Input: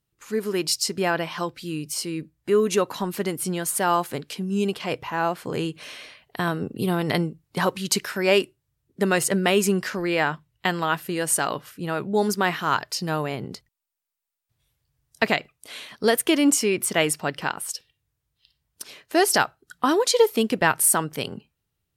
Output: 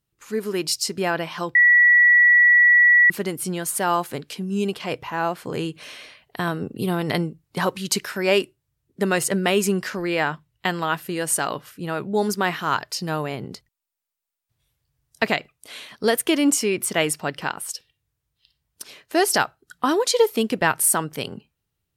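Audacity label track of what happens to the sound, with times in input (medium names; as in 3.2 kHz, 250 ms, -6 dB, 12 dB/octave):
1.550000	3.100000	bleep 1.94 kHz -10.5 dBFS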